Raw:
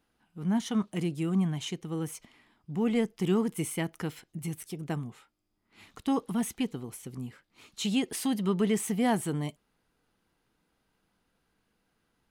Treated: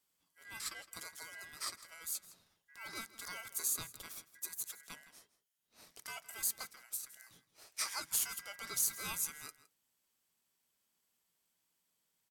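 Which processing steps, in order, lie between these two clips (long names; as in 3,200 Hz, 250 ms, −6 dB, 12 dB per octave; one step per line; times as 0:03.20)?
first-order pre-emphasis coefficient 0.97
ring modulation 1,800 Hz
slap from a distant wall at 28 metres, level −16 dB
on a send at −17 dB: convolution reverb RT60 0.20 s, pre-delay 3 ms
on the sum: level +5.5 dB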